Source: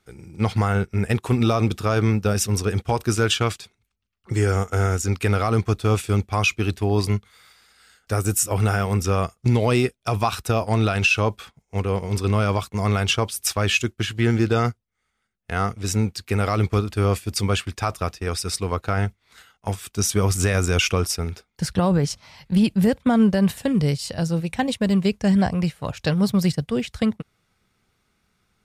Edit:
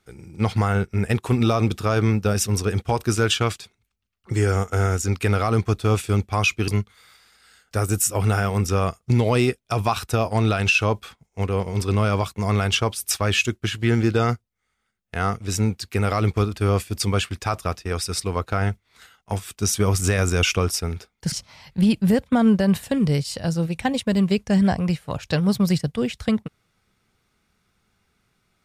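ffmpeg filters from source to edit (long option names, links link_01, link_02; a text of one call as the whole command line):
ffmpeg -i in.wav -filter_complex "[0:a]asplit=3[link_01][link_02][link_03];[link_01]atrim=end=6.682[link_04];[link_02]atrim=start=7.038:end=21.682[link_05];[link_03]atrim=start=22.058[link_06];[link_04][link_05]acrossfade=duration=0.004:curve1=hsin:curve2=hsin[link_07];[link_07][link_06]acrossfade=duration=0.004:curve1=hsin:curve2=hsin" out.wav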